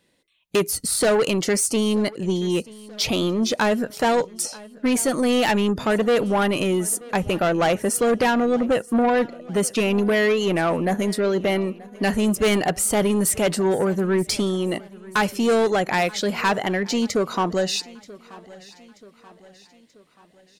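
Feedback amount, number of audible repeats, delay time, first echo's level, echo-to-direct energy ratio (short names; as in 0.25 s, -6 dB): 51%, 3, 0.932 s, -21.5 dB, -20.0 dB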